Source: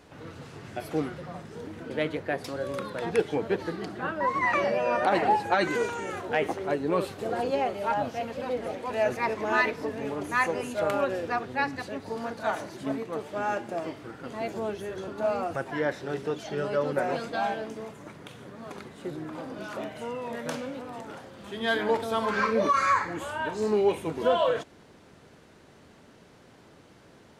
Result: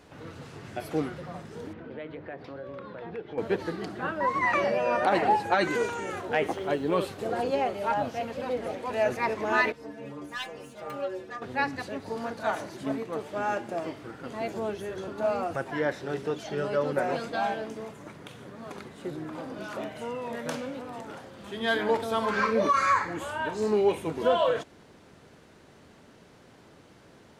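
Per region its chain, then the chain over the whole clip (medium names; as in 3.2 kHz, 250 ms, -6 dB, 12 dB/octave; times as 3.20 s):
1.73–3.38 s: hum notches 50/100/150/200/250/300/350 Hz + compression 2.5:1, threshold -38 dBFS + distance through air 320 m
6.52–7.03 s: peaking EQ 3.2 kHz +11.5 dB 0.2 oct + added noise pink -64 dBFS
9.72–11.42 s: self-modulated delay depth 0.12 ms + inharmonic resonator 68 Hz, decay 0.38 s, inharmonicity 0.008
whole clip: none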